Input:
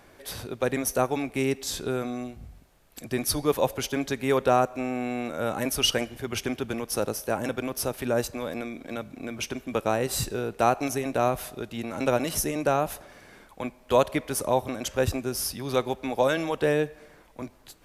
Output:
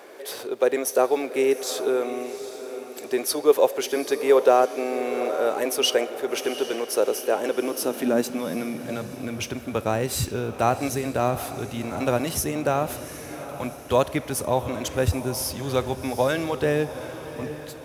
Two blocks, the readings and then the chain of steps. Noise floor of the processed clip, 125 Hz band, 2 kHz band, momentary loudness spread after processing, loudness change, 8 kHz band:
-39 dBFS, +3.0 dB, +1.0 dB, 13 LU, +3.0 dB, +1.5 dB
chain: G.711 law mismatch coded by mu; diffused feedback echo 0.771 s, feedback 46%, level -12 dB; high-pass sweep 420 Hz -> 78 Hz, 7.38–9.65

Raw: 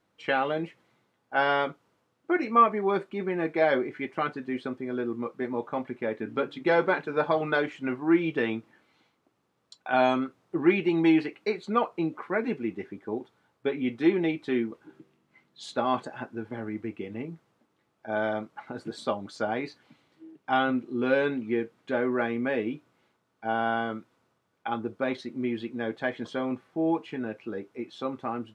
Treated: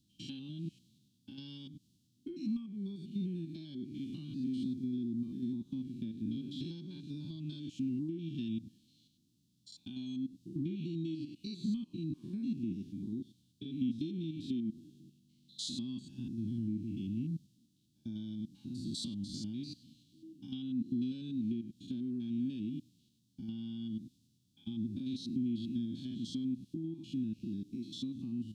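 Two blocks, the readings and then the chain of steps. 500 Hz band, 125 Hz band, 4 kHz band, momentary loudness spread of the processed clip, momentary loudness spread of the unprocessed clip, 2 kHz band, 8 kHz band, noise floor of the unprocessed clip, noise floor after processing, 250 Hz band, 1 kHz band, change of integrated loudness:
-25.0 dB, -1.0 dB, -6.0 dB, 11 LU, 13 LU, under -30 dB, n/a, -74 dBFS, -74 dBFS, -6.5 dB, under -40 dB, -11.0 dB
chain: stepped spectrum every 0.1 s; compressor 6:1, threshold -34 dBFS, peak gain reduction 16.5 dB; inverse Chebyshev band-stop 450–2100 Hz, stop band 40 dB; gain +6.5 dB

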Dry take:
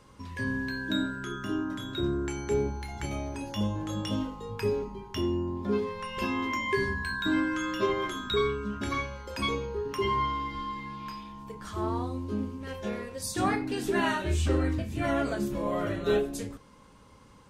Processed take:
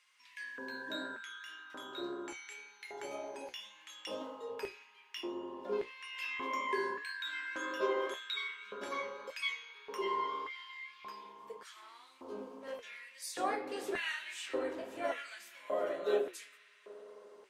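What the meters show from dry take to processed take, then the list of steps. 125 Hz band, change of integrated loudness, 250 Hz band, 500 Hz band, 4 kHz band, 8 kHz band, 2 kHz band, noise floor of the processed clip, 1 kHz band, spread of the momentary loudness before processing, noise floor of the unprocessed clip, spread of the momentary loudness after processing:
under -30 dB, -8.5 dB, -16.5 dB, -7.5 dB, -6.0 dB, -8.0 dB, -6.0 dB, -62 dBFS, -7.5 dB, 9 LU, -55 dBFS, 15 LU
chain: spring tank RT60 4 s, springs 53 ms, chirp 60 ms, DRR 11 dB; LFO high-pass square 0.86 Hz 510–2200 Hz; flange 1.8 Hz, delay 8.2 ms, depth 9.5 ms, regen -56%; gain -4.5 dB

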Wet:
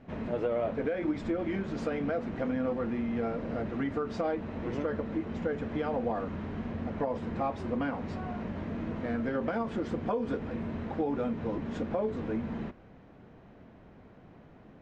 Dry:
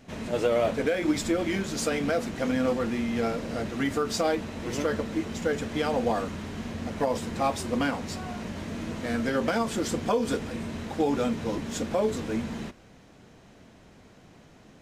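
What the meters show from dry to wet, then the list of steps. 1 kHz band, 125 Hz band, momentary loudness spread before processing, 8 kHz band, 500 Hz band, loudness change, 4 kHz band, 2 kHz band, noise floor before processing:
-5.5 dB, -2.5 dB, 9 LU, under -25 dB, -5.0 dB, -4.5 dB, -15.5 dB, -8.0 dB, -54 dBFS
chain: Bessel low-pass 1500 Hz, order 2; compressor 2:1, threshold -31 dBFS, peak gain reduction 6.5 dB

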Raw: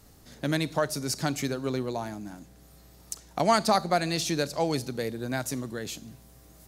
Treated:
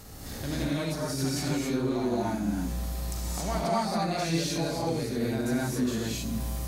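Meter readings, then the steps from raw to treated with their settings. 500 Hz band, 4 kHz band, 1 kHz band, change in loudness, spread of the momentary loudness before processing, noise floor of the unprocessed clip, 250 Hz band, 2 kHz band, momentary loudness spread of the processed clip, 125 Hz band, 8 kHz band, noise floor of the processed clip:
-2.0 dB, -1.5 dB, -4.0 dB, -1.0 dB, 16 LU, -54 dBFS, +3.0 dB, -3.0 dB, 5 LU, +3.0 dB, -0.5 dB, -38 dBFS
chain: transient shaper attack -7 dB, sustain +3 dB; compressor 6:1, threshold -44 dBFS, peak gain reduction 23 dB; harmonic-percussive split harmonic +7 dB; non-linear reverb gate 0.3 s rising, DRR -7 dB; gain +4 dB

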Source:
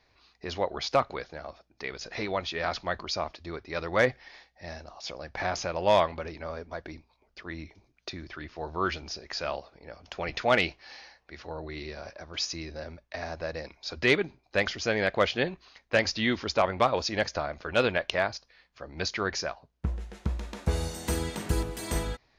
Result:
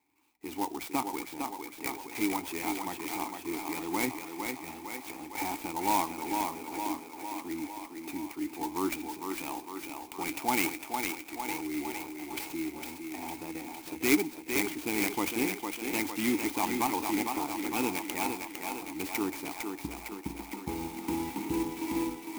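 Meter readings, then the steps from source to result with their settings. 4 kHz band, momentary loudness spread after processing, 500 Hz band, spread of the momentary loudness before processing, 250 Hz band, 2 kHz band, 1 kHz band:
-7.0 dB, 10 LU, -8.5 dB, 18 LU, +4.5 dB, -5.0 dB, -1.0 dB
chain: high shelf 4700 Hz +10 dB; in parallel at -3 dB: limiter -19 dBFS, peak gain reduction 11 dB; on the sum: vowel filter u; AGC gain up to 7 dB; on a send: thinning echo 0.456 s, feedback 66%, high-pass 210 Hz, level -4.5 dB; on the sum: two-slope reverb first 0.43 s, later 2.8 s, from -18 dB, DRR 19.5 dB; clock jitter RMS 0.059 ms

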